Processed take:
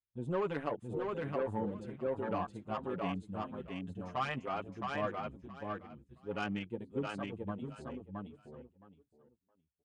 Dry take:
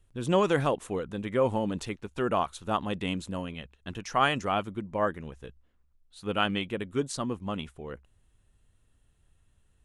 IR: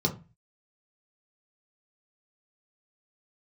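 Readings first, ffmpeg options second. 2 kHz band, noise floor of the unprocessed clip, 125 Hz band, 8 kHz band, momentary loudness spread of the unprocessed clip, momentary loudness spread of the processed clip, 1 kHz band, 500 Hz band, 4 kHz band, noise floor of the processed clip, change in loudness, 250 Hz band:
-9.0 dB, -67 dBFS, -7.5 dB, under -20 dB, 16 LU, 11 LU, -8.5 dB, -8.0 dB, -14.5 dB, -82 dBFS, -9.0 dB, -7.0 dB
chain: -filter_complex "[0:a]highpass=52,bandreject=f=5.7k:w=7.6,afwtdn=0.02,agate=range=-10dB:threshold=-54dB:ratio=16:detection=peak,asoftclip=type=tanh:threshold=-18.5dB,asplit=2[a][b];[b]aecho=0:1:668|1336|2004:0.708|0.127|0.0229[c];[a][c]amix=inputs=2:normalize=0,aresample=22050,aresample=44100,asplit=2[d][e];[e]adelay=6.3,afreqshift=1.2[f];[d][f]amix=inputs=2:normalize=1,volume=-5dB"

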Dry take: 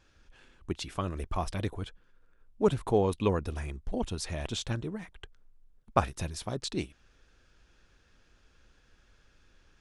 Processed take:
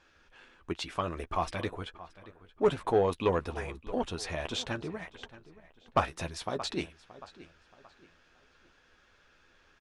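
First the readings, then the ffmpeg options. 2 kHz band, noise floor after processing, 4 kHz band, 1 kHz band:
+3.5 dB, -65 dBFS, +1.5 dB, +2.0 dB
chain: -filter_complex "[0:a]asplit=2[a][b];[b]adelay=12,volume=-9dB[c];[a][c]amix=inputs=2:normalize=0,asplit=2[d][e];[e]adelay=626,lowpass=f=4.9k:p=1,volume=-18dB,asplit=2[f][g];[g]adelay=626,lowpass=f=4.9k:p=1,volume=0.36,asplit=2[h][i];[i]adelay=626,lowpass=f=4.9k:p=1,volume=0.36[j];[d][f][h][j]amix=inputs=4:normalize=0,asplit=2[k][l];[l]highpass=f=720:p=1,volume=15dB,asoftclip=type=tanh:threshold=-9dB[m];[k][m]amix=inputs=2:normalize=0,lowpass=f=2.3k:p=1,volume=-6dB,volume=-3.5dB"

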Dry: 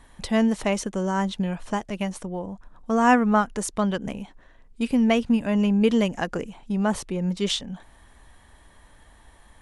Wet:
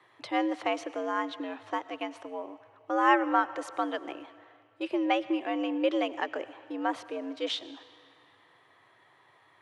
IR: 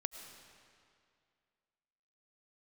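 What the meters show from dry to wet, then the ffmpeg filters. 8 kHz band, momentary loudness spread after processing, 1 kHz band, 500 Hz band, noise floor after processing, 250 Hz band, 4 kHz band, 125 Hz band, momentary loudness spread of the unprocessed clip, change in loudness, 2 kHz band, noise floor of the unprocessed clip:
under -15 dB, 14 LU, -2.5 dB, -5.5 dB, -63 dBFS, -10.0 dB, -5.5 dB, under -35 dB, 14 LU, -6.5 dB, -3.5 dB, -54 dBFS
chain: -filter_complex "[0:a]acrossover=split=210 4100:gain=0.0794 1 0.1[a][b][c];[a][b][c]amix=inputs=3:normalize=0,afreqshift=92,asplit=2[d][e];[1:a]atrim=start_sample=2205,lowshelf=f=400:g=-11[f];[e][f]afir=irnorm=-1:irlink=0,volume=-3dB[g];[d][g]amix=inputs=2:normalize=0,volume=-7dB"

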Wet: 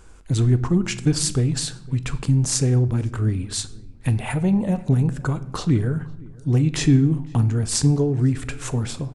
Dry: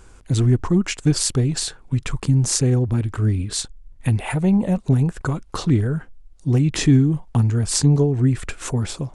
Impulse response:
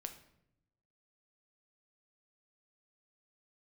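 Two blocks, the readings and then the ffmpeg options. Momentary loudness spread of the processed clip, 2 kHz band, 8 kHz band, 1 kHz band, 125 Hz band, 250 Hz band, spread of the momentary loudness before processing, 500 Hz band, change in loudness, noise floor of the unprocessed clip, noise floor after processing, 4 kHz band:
9 LU, -1.5 dB, -1.5 dB, -1.5 dB, -1.0 dB, -1.5 dB, 9 LU, -2.0 dB, -1.5 dB, -47 dBFS, -42 dBFS, -1.5 dB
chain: -filter_complex "[0:a]asplit=2[a][b];[b]adelay=507,lowpass=f=1.8k:p=1,volume=-23dB,asplit=2[c][d];[d]adelay=507,lowpass=f=1.8k:p=1,volume=0.31[e];[a][c][e]amix=inputs=3:normalize=0,asplit=2[f][g];[1:a]atrim=start_sample=2205[h];[g][h]afir=irnorm=-1:irlink=0,volume=3.5dB[i];[f][i]amix=inputs=2:normalize=0,volume=-7.5dB"

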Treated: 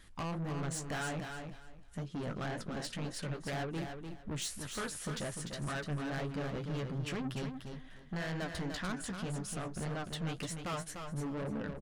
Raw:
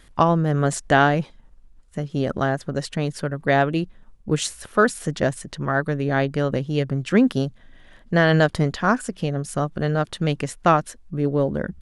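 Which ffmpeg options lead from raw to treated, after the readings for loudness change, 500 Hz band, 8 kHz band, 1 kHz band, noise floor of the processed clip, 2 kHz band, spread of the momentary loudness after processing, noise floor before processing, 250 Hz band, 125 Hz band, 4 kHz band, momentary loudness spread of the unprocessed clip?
-17.0 dB, -19.5 dB, -8.5 dB, -19.5 dB, -53 dBFS, -17.5 dB, 6 LU, -52 dBFS, -16.5 dB, -15.5 dB, -11.0 dB, 9 LU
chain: -filter_complex "[0:a]flanger=delay=9:depth=9.1:regen=31:speed=1.9:shape=sinusoidal,acompressor=threshold=-24dB:ratio=3,asoftclip=type=tanh:threshold=-31.5dB,equalizer=f=510:t=o:w=1.8:g=-3.5,asplit=2[a][b];[b]aecho=0:1:297|594|891:0.473|0.0994|0.0209[c];[a][c]amix=inputs=2:normalize=0,volume=-2dB"

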